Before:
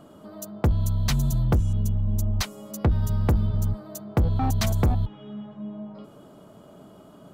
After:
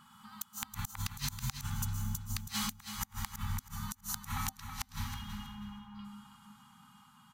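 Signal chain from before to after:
source passing by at 0:02.82, 6 m/s, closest 2.5 metres
downward compressor 16 to 1, threshold −39 dBFS, peak gain reduction 21.5 dB
tilt shelving filter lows −9 dB, about 760 Hz
dense smooth reverb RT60 1.7 s, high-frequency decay 0.65×, pre-delay 105 ms, DRR 4 dB
gate with flip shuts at −34 dBFS, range −35 dB
repeating echo 324 ms, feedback 27%, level −8.5 dB
wrap-around overflow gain 33 dB
brick-wall band-stop 250–780 Hz
one half of a high-frequency compander decoder only
level +13 dB

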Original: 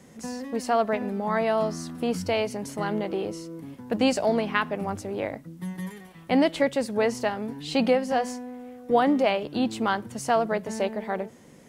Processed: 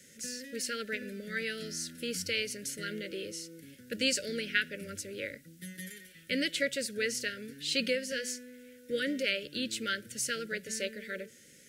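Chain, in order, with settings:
Chebyshev band-stop filter 580–1,400 Hz, order 5
tilt shelving filter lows −8.5 dB, about 1,300 Hz
level −3.5 dB

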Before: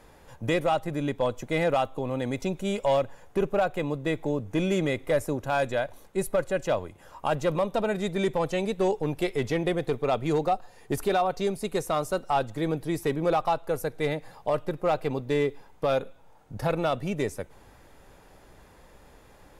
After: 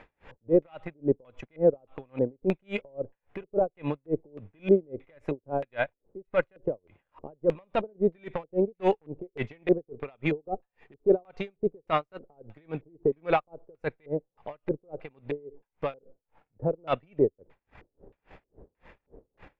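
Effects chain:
transient designer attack −7 dB, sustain −11 dB
auto-filter low-pass square 1.6 Hz 440–2,400 Hz
tremolo with a sine in dB 3.6 Hz, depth 37 dB
level +4.5 dB

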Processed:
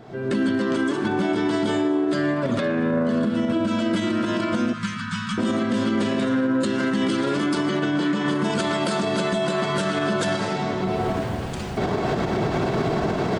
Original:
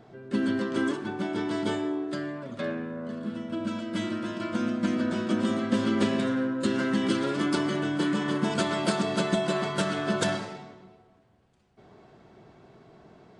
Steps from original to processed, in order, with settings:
camcorder AGC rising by 40 dB per second
0:04.73–0:05.38: elliptic band-stop filter 180–1,100 Hz, stop band 40 dB
brickwall limiter −22 dBFS, peak gain reduction 9 dB
0:07.69–0:08.26: band-pass filter 110–6,500 Hz
single-tap delay 235 ms −21.5 dB
level +7.5 dB

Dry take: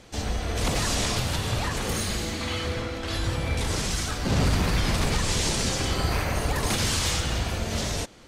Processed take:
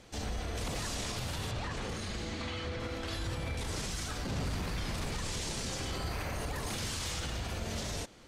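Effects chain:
brickwall limiter −22.5 dBFS, peak gain reduction 7.5 dB
0:01.51–0:02.80: high-frequency loss of the air 68 metres
level −5.5 dB

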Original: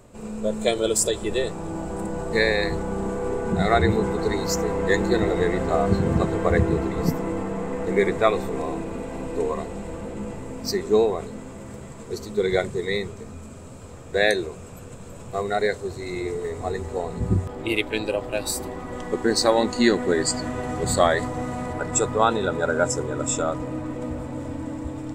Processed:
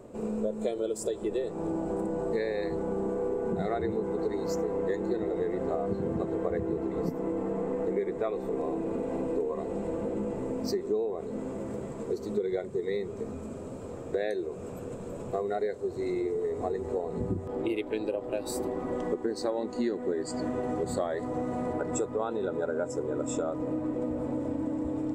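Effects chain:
parametric band 390 Hz +14.5 dB 2.6 octaves
downward compressor, threshold −20 dBFS, peak gain reduction 18 dB
level −8 dB

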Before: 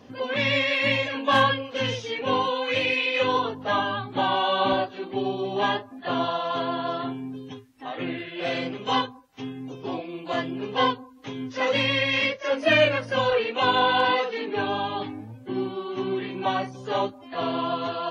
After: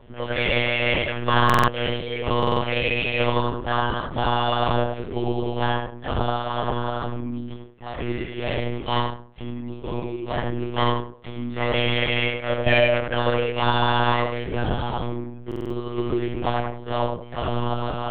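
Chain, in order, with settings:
parametric band 320 Hz +7 dB 0.28 octaves
on a send: feedback echo with a low-pass in the loop 88 ms, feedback 27%, low-pass 1,600 Hz, level −3 dB
on the sum: one-pitch LPC vocoder at 8 kHz 120 Hz
buffer that repeats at 0:01.45/0:02.38/0:15.47, samples 2,048, times 4

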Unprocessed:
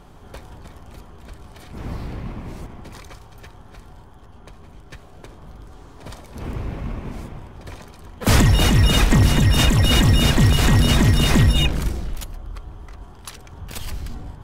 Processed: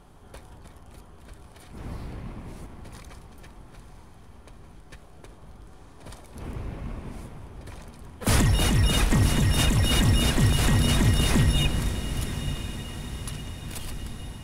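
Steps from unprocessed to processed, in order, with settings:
parametric band 9,900 Hz +8.5 dB 0.33 octaves
feedback delay with all-pass diffusion 988 ms, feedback 55%, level −11 dB
level −6.5 dB

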